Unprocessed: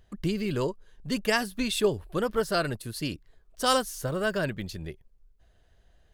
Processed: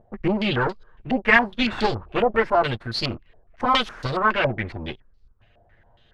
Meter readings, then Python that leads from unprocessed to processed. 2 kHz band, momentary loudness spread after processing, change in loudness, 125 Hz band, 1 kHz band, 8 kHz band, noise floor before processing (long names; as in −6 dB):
+10.5 dB, 13 LU, +6.5 dB, +4.5 dB, +9.5 dB, below −10 dB, −63 dBFS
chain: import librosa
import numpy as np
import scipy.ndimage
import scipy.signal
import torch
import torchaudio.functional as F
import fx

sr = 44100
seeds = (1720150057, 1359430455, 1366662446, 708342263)

y = fx.lower_of_two(x, sr, delay_ms=8.6)
y = fx.filter_held_lowpass(y, sr, hz=7.2, low_hz=710.0, high_hz=4400.0)
y = y * 10.0 ** (5.5 / 20.0)